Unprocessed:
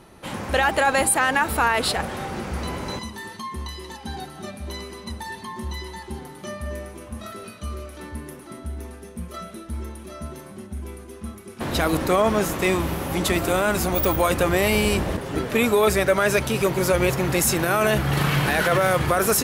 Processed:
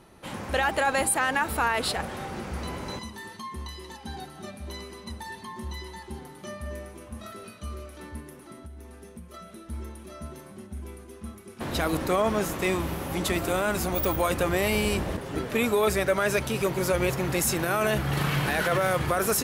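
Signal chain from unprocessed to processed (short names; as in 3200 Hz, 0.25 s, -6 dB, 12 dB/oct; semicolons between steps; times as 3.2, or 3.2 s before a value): 8.2–9.67 compressor 6:1, threshold -35 dBFS, peak gain reduction 8.5 dB; gain -5 dB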